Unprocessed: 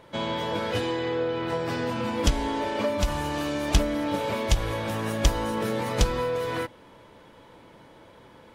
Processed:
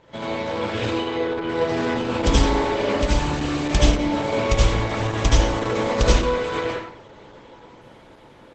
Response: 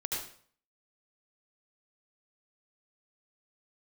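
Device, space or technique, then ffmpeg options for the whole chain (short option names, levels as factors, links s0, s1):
speakerphone in a meeting room: -filter_complex "[1:a]atrim=start_sample=2205[s0];[0:a][s0]afir=irnorm=-1:irlink=0,asplit=2[s1][s2];[s2]adelay=90,highpass=300,lowpass=3400,asoftclip=type=hard:threshold=0.211,volume=0.501[s3];[s1][s3]amix=inputs=2:normalize=0,dynaudnorm=f=380:g=7:m=1.78" -ar 48000 -c:a libopus -b:a 12k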